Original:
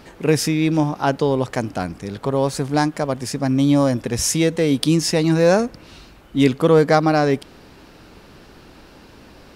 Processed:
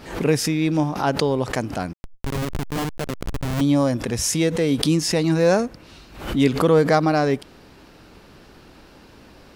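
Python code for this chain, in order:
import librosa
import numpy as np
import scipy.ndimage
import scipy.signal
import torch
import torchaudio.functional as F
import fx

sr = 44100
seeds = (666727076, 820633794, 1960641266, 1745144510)

y = fx.schmitt(x, sr, flips_db=-18.5, at=(1.93, 3.61))
y = fx.pre_swell(y, sr, db_per_s=99.0)
y = F.gain(torch.from_numpy(y), -2.5).numpy()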